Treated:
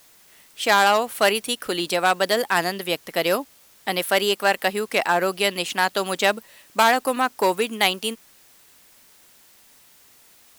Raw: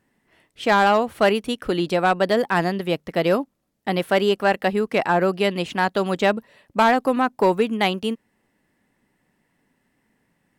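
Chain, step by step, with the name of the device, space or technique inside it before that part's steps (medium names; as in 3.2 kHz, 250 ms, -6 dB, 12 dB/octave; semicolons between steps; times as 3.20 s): turntable without a phono preamp (RIAA curve recording; white noise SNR 30 dB)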